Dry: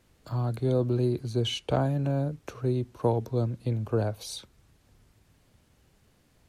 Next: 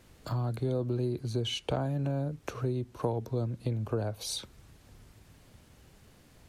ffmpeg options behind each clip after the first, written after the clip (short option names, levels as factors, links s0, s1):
-af "acompressor=threshold=0.0112:ratio=2.5,volume=2"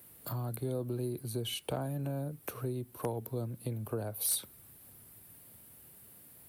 -filter_complex "[0:a]highpass=95,aexciter=amount=13.1:drive=5.1:freq=9300,asplit=2[s0][s1];[s1]aeval=exprs='(mod(7.08*val(0)+1,2)-1)/7.08':c=same,volume=0.447[s2];[s0][s2]amix=inputs=2:normalize=0,volume=0.422"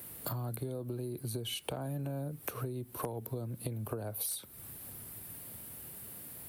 -af "acompressor=threshold=0.00708:ratio=10,volume=2.66"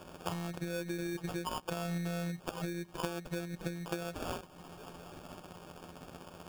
-af "equalizer=f=7200:t=o:w=0.27:g=7,afftfilt=real='hypot(re,im)*cos(PI*b)':imag='0':win_size=1024:overlap=0.75,acrusher=samples=22:mix=1:aa=0.000001,volume=1.78"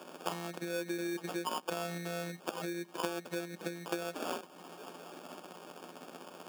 -af "highpass=f=220:w=0.5412,highpass=f=220:w=1.3066,volume=1.26"